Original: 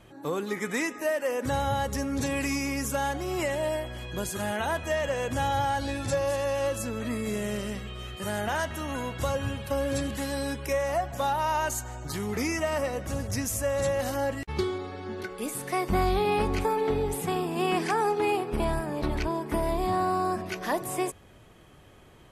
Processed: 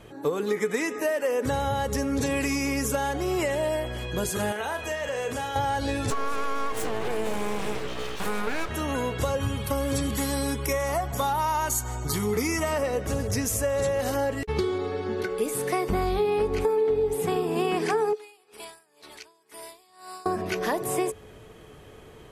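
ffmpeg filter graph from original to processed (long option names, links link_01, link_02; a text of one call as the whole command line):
ffmpeg -i in.wav -filter_complex "[0:a]asettb=1/sr,asplit=3[link_01][link_02][link_03];[link_01]atrim=end=4.524[link_04];[link_02]atrim=start=4.52:end=5.56,asetpts=PTS-STARTPTS,afade=type=in:duration=0.004:curve=qsin,afade=type=out:start_time=1.036:duration=0.004:curve=qsin,lowshelf=frequency=390:gain=-9,acompressor=threshold=-34dB:ratio=2.5:attack=3.2:release=140:knee=1:detection=peak,asplit=2[link_05][link_06];[link_06]adelay=39,volume=-7.5dB[link_07];[link_05][link_07]amix=inputs=2:normalize=0,atrim=end_sample=45864[link_08];[link_03]atrim=start=5.556[link_09];[link_04][link_08]acrossfade=duration=0.004:curve1=hsin:curve2=qsin[link_10];[link_10][link_09]acrossfade=duration=0.004:curve1=qsin:curve2=hsin,asettb=1/sr,asplit=3[link_11][link_12][link_13];[link_11]atrim=end=6.104[link_14];[link_12]atrim=start=6.1:end=8.69,asetpts=PTS-STARTPTS,afade=type=in:duration=0.004:curve=qsin,afade=type=out:start_time=2.586:duration=0.004:curve=qsin,equalizer=frequency=770:width=0.68:gain=8.5,acompressor=threshold=-27dB:ratio=2.5:attack=3.2:release=140:knee=1:detection=peak,aeval=exprs='abs(val(0))':channel_layout=same[link_15];[link_13]atrim=start=8.686[link_16];[link_14][link_15]acrossfade=duration=0.004:curve1=hsin:curve2=qsin[link_17];[link_17][link_16]acrossfade=duration=0.004:curve1=qsin:curve2=hsin,asettb=1/sr,asplit=3[link_18][link_19][link_20];[link_18]atrim=end=9.404[link_21];[link_19]atrim=start=9.4:end=12.72,asetpts=PTS-STARTPTS,afade=type=in:duration=0.004:curve=qsin,afade=type=out:start_time=3.316:duration=0.004:curve=qsin,highshelf=frequency=8800:gain=9,bandreject=frequency=2400:width=15,aecho=1:1:0.9:0.36,atrim=end_sample=146412[link_22];[link_20]atrim=start=12.716[link_23];[link_21][link_22]acrossfade=duration=0.004:curve1=hsin:curve2=qsin[link_24];[link_24][link_23]acrossfade=duration=0.004:curve1=qsin:curve2=hsin,asettb=1/sr,asplit=3[link_25][link_26][link_27];[link_25]atrim=end=18.134[link_28];[link_26]atrim=start=18.13:end=20.26,asetpts=PTS-STARTPTS,afade=type=in:duration=0.004:curve=qsin,afade=type=out:start_time=2.126:duration=0.004:curve=qsin,bandpass=frequency=7800:width_type=q:width=0.76,aeval=exprs='val(0)*pow(10,-20*(0.5-0.5*cos(2*PI*2*n/s))/20)':channel_layout=same[link_29];[link_27]atrim=start=20.256[link_30];[link_28][link_29]acrossfade=duration=0.004:curve1=hsin:curve2=qsin[link_31];[link_31][link_30]acrossfade=duration=0.004:curve1=qsin:curve2=hsin,equalizer=frequency=430:width_type=o:width=0.21:gain=14.5,bandreject=frequency=400:width=12,acompressor=threshold=-27dB:ratio=5,volume=4.5dB" out.wav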